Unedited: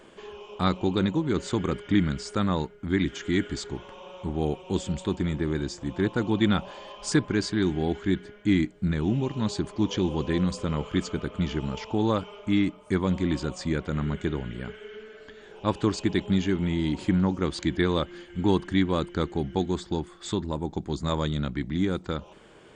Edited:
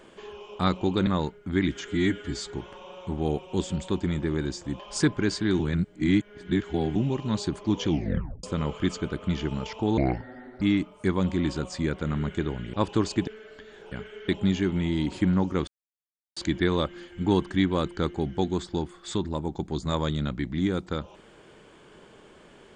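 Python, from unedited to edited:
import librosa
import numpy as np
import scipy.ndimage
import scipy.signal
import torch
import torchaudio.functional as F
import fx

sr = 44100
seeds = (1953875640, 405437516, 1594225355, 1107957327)

y = fx.edit(x, sr, fx.cut(start_s=1.07, length_s=1.37),
    fx.stretch_span(start_s=3.25, length_s=0.41, factor=1.5),
    fx.cut(start_s=5.96, length_s=0.95),
    fx.reverse_span(start_s=7.71, length_s=1.36),
    fx.tape_stop(start_s=9.98, length_s=0.57),
    fx.speed_span(start_s=12.09, length_s=0.39, speed=0.61),
    fx.swap(start_s=14.6, length_s=0.37, other_s=15.61, other_length_s=0.54),
    fx.insert_silence(at_s=17.54, length_s=0.69), tone=tone)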